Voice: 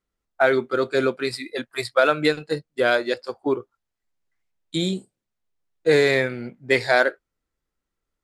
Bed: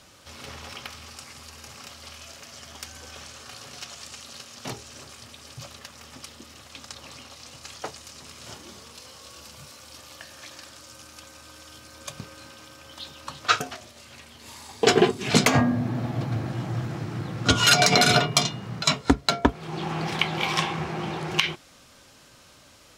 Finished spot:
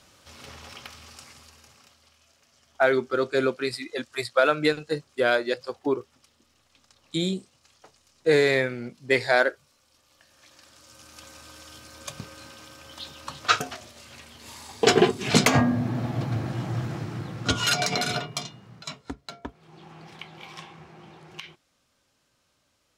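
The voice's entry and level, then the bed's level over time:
2.40 s, −2.5 dB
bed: 0:01.26 −4 dB
0:02.14 −18.5 dB
0:10.02 −18.5 dB
0:11.28 0 dB
0:16.92 0 dB
0:19.18 −17.5 dB

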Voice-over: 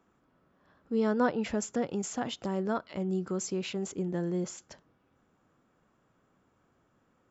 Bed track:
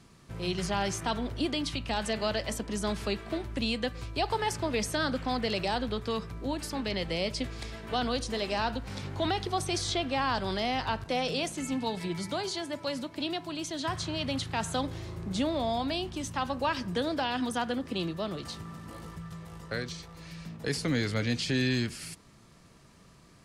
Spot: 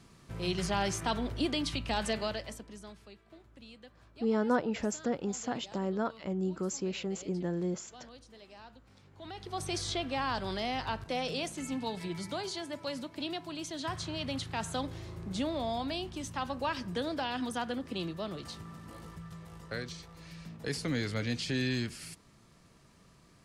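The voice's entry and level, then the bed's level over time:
3.30 s, −1.5 dB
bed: 0:02.11 −1 dB
0:03.07 −22 dB
0:09.11 −22 dB
0:09.65 −4 dB

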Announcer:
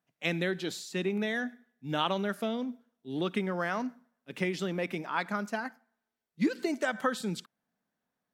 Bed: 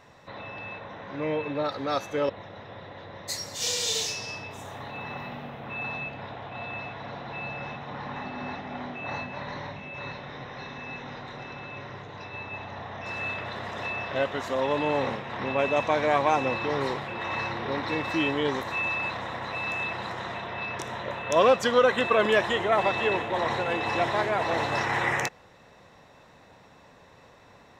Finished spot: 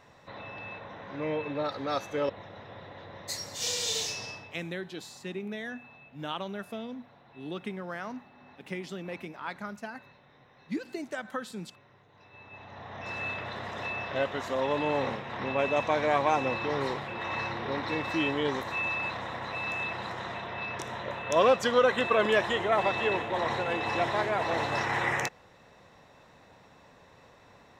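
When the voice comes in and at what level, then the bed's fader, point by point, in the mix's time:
4.30 s, −6.0 dB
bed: 0:04.25 −3 dB
0:04.81 −19.5 dB
0:12.07 −19.5 dB
0:13.02 −2.5 dB

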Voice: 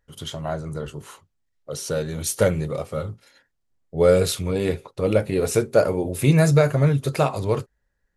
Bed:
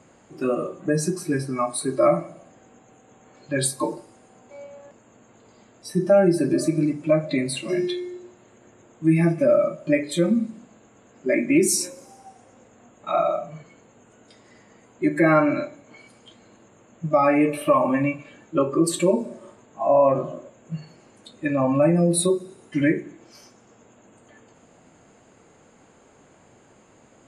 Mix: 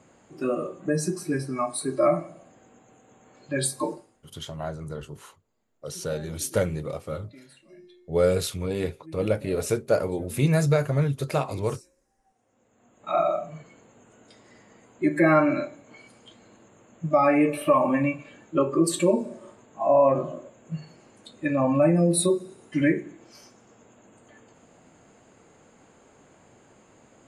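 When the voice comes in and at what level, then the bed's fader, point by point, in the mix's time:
4.15 s, −5.0 dB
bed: 0:03.92 −3 dB
0:04.41 −26.5 dB
0:12.12 −26.5 dB
0:13.17 −1.5 dB

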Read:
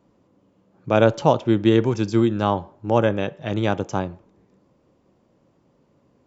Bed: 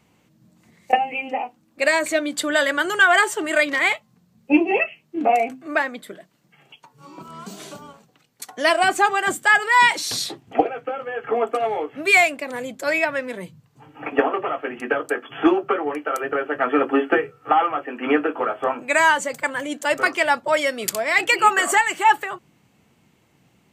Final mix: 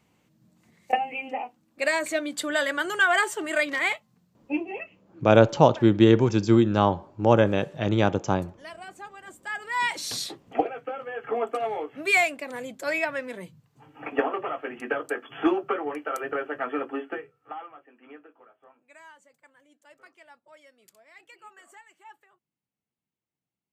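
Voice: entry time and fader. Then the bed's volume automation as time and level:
4.35 s, 0.0 dB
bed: 0:04.25 −6 dB
0:05.22 −24.5 dB
0:09.22 −24.5 dB
0:10.06 −6 dB
0:16.40 −6 dB
0:18.55 −33.5 dB

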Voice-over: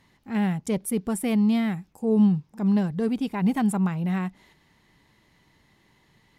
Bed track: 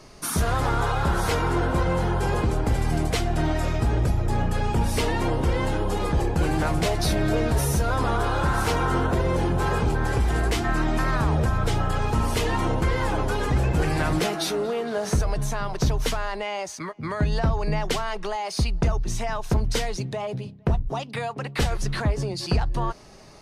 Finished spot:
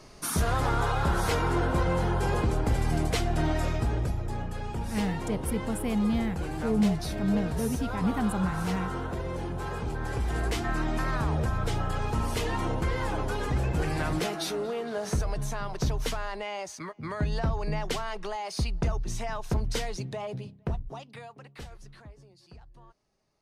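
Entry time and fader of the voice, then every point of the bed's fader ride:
4.60 s, −5.5 dB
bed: 0:03.63 −3 dB
0:04.48 −10.5 dB
0:09.77 −10.5 dB
0:10.46 −5.5 dB
0:20.44 −5.5 dB
0:22.31 −28 dB

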